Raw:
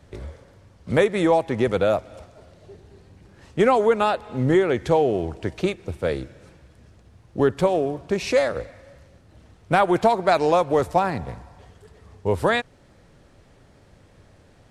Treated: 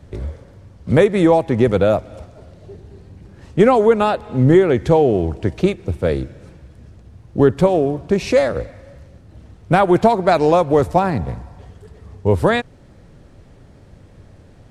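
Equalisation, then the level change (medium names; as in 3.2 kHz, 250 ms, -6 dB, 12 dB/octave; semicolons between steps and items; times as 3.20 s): bass shelf 440 Hz +8.5 dB; +1.5 dB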